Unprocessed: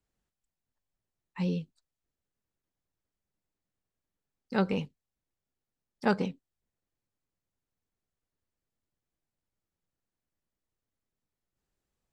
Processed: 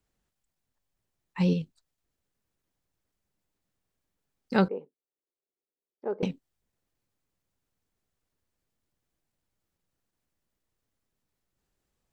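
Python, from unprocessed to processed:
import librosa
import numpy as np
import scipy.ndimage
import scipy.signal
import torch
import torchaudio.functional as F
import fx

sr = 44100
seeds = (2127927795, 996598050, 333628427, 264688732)

p1 = fx.level_steps(x, sr, step_db=10)
p2 = x + (p1 * 10.0 ** (2.0 / 20.0))
y = fx.ladder_bandpass(p2, sr, hz=460.0, resonance_pct=55, at=(4.68, 6.23))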